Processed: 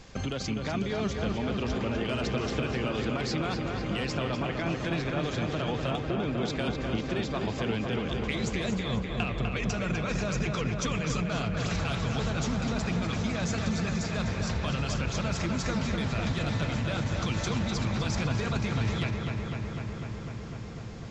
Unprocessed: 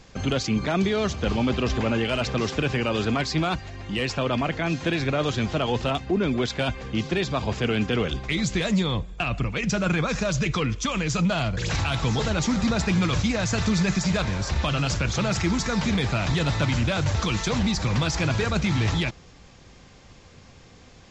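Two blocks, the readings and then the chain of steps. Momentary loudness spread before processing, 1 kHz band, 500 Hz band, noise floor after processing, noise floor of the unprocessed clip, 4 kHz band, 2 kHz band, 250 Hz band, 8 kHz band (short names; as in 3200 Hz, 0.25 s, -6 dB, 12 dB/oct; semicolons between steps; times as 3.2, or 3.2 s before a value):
3 LU, -5.5 dB, -5.5 dB, -37 dBFS, -50 dBFS, -7.0 dB, -6.0 dB, -5.5 dB, -7.0 dB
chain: compressor 6:1, threshold -30 dBFS, peak gain reduction 11 dB; on a send: darkening echo 0.25 s, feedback 85%, low-pass 3900 Hz, level -5 dB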